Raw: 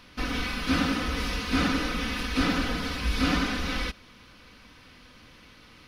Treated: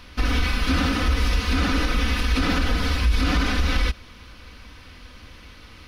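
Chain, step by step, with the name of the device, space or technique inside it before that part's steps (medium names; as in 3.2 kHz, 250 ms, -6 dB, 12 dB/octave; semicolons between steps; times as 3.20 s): car stereo with a boomy subwoofer (resonant low shelf 100 Hz +7.5 dB, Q 1.5; peak limiter -17.5 dBFS, peak gain reduction 9 dB); trim +5.5 dB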